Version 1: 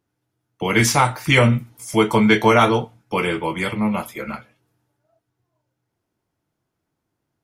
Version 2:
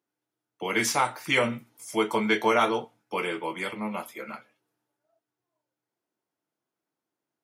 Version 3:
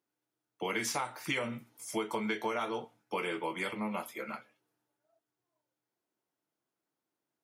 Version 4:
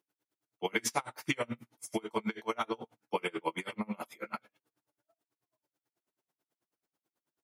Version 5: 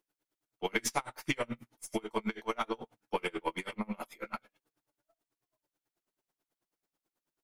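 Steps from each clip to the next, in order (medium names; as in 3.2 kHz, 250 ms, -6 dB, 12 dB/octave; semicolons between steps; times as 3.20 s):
high-pass 270 Hz 12 dB/octave; trim -7.5 dB
compression 10:1, threshold -28 dBFS, peak gain reduction 11 dB; trim -2 dB
logarithmic tremolo 9.2 Hz, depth 33 dB; trim +6 dB
partial rectifier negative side -3 dB; trim +1 dB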